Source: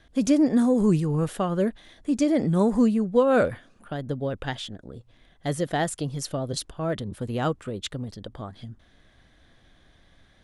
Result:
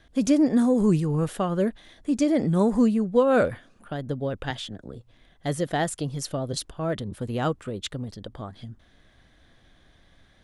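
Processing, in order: 4.5–4.95 three-band squash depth 40%

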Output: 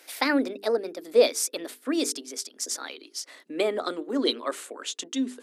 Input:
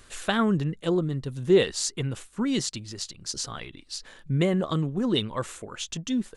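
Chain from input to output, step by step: speed glide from 133% -> 102%; Chebyshev high-pass 260 Hz, order 5; notches 50/100/150/200/250/300/350/400/450 Hz; gain +1.5 dB

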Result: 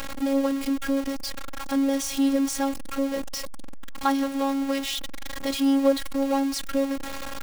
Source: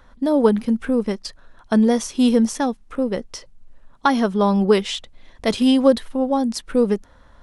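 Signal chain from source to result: zero-crossing step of -17.5 dBFS; robotiser 274 Hz; gain -7.5 dB

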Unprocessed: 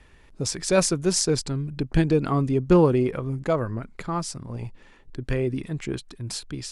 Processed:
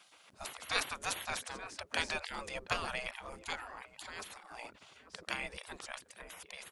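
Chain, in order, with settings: outdoor echo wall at 150 m, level -17 dB; spectral gate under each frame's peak -25 dB weak; gain +4 dB

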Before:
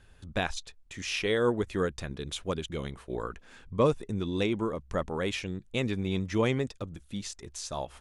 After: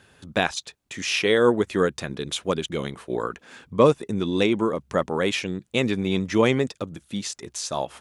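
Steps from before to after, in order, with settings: HPF 150 Hz 12 dB/oct; gain +8 dB

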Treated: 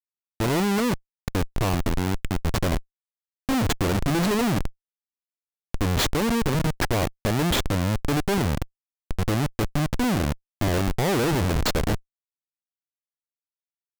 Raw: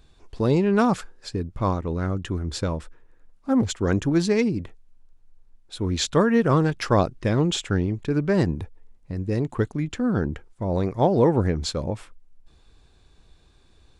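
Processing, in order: 1.89–2.42 low shelf 420 Hz -6.5 dB; 6.09–6.76 compressor 6:1, threshold -23 dBFS, peak gain reduction 9 dB; Schmitt trigger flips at -25.5 dBFS; gain +3.5 dB

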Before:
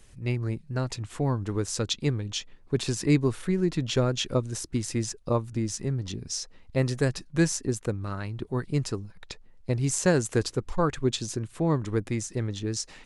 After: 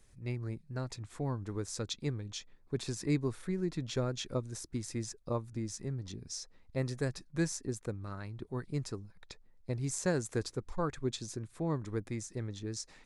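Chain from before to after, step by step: bell 2900 Hz -8 dB 0.22 oct; gain -9 dB

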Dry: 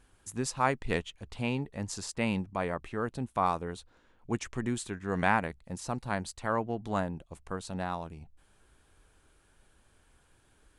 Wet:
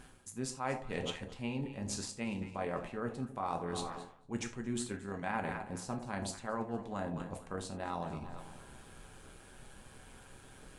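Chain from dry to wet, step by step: low shelf 240 Hz +8 dB; on a send: echo with dull and thin repeats by turns 0.113 s, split 900 Hz, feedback 60%, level -13 dB; on the sum: AM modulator 130 Hz, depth 30%; reverse; compressor 8:1, threshold -45 dBFS, peak gain reduction 24 dB; reverse; low shelf 110 Hz -12 dB; non-linear reverb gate 0.11 s falling, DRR 4 dB; gain +11 dB

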